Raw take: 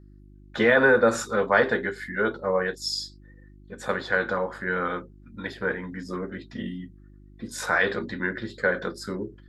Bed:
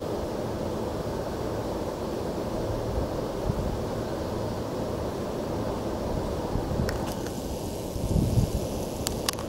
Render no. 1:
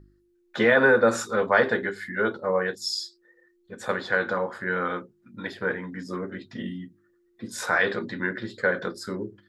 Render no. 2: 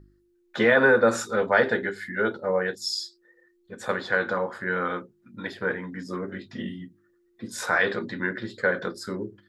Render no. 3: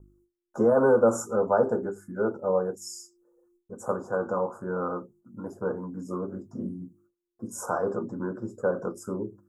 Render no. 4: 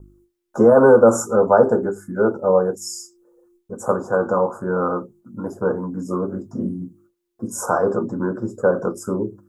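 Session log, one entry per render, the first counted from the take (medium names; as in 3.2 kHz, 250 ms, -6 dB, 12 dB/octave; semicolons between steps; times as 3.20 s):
de-hum 50 Hz, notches 6
1.19–2.87 s: band-stop 1.1 kHz, Q 6.9; 6.26–6.82 s: doubling 20 ms -7 dB
gate with hold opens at -56 dBFS; inverse Chebyshev band-stop 1.8–4.4 kHz, stop band 40 dB
trim +9 dB; peak limiter -1 dBFS, peak gain reduction 1 dB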